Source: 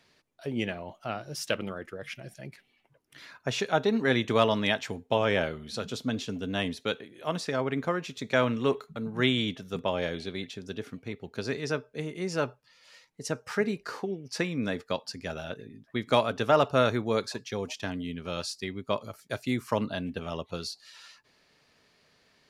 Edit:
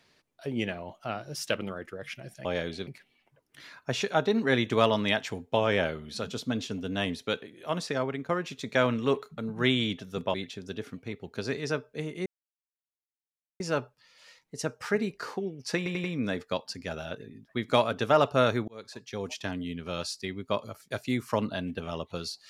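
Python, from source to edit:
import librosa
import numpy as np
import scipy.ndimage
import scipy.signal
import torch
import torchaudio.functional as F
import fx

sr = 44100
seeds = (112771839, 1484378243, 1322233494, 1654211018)

y = fx.edit(x, sr, fx.fade_out_to(start_s=7.57, length_s=0.3, floor_db=-10.5),
    fx.move(start_s=9.92, length_s=0.42, to_s=2.45),
    fx.insert_silence(at_s=12.26, length_s=1.34),
    fx.stutter(start_s=14.43, slice_s=0.09, count=4),
    fx.fade_in_span(start_s=17.07, length_s=0.64), tone=tone)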